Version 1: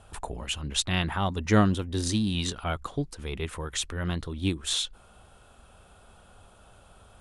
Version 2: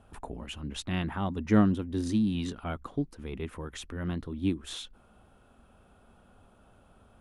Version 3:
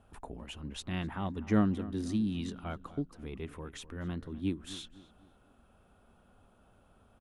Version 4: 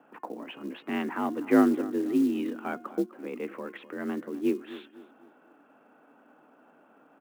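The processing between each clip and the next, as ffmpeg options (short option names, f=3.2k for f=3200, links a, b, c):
-af "equalizer=f=250:t=o:w=1:g=9,equalizer=f=4k:t=o:w=1:g=-5,equalizer=f=8k:t=o:w=1:g=-8,volume=-6dB"
-filter_complex "[0:a]asplit=2[a][b];[b]adelay=253,lowpass=f=2.3k:p=1,volume=-16dB,asplit=2[c][d];[d]adelay=253,lowpass=f=2.3k:p=1,volume=0.41,asplit=2[e][f];[f]adelay=253,lowpass=f=2.3k:p=1,volume=0.41,asplit=2[g][h];[h]adelay=253,lowpass=f=2.3k:p=1,volume=0.41[i];[a][c][e][g][i]amix=inputs=5:normalize=0,volume=-4.5dB"
-af "highpass=f=170:t=q:w=0.5412,highpass=f=170:t=q:w=1.307,lowpass=f=2.6k:t=q:w=0.5176,lowpass=f=2.6k:t=q:w=0.7071,lowpass=f=2.6k:t=q:w=1.932,afreqshift=52,bandreject=f=356.8:t=h:w=4,bandreject=f=713.6:t=h:w=4,bandreject=f=1.0704k:t=h:w=4,bandreject=f=1.4272k:t=h:w=4,bandreject=f=1.784k:t=h:w=4,bandreject=f=2.1408k:t=h:w=4,bandreject=f=2.4976k:t=h:w=4,bandreject=f=2.8544k:t=h:w=4,bandreject=f=3.2112k:t=h:w=4,acrusher=bits=7:mode=log:mix=0:aa=0.000001,volume=7.5dB"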